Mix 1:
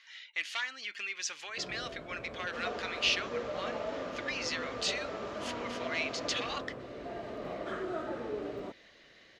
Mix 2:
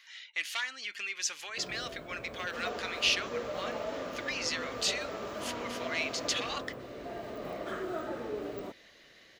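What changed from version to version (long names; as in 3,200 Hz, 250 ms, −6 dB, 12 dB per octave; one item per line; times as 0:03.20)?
master: remove high-frequency loss of the air 66 metres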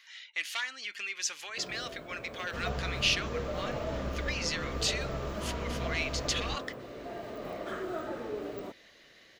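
second sound: remove inverse Chebyshev high-pass filter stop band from 240 Hz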